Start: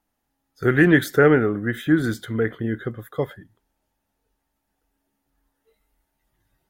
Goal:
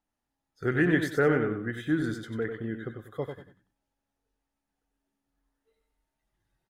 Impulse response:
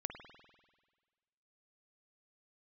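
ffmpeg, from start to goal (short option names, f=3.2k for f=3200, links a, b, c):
-filter_complex "[0:a]lowpass=9.8k,asplit=2[a][b];[b]aecho=0:1:94|188|282:0.447|0.125|0.035[c];[a][c]amix=inputs=2:normalize=0,volume=-9dB"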